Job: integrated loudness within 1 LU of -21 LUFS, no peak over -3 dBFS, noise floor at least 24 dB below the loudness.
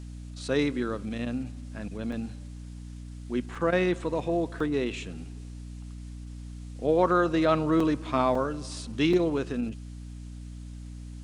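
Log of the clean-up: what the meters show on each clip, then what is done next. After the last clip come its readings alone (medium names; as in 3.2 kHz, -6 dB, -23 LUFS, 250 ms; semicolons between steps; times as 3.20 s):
dropouts 6; longest dropout 3.9 ms; hum 60 Hz; highest harmonic 300 Hz; hum level -38 dBFS; loudness -28.0 LUFS; peak level -10.5 dBFS; loudness target -21.0 LUFS
-> interpolate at 2.12/3.55/4.60/7.80/8.35/9.13 s, 3.9 ms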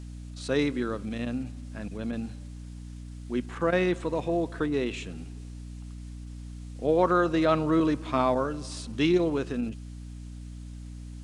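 dropouts 0; hum 60 Hz; highest harmonic 300 Hz; hum level -38 dBFS
-> de-hum 60 Hz, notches 5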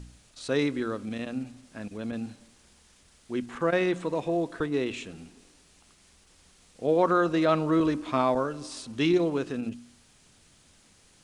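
hum not found; loudness -28.0 LUFS; peak level -10.5 dBFS; loudness target -21.0 LUFS
-> trim +7 dB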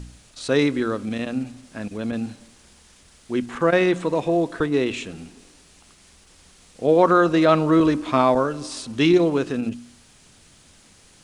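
loudness -21.0 LUFS; peak level -3.5 dBFS; noise floor -53 dBFS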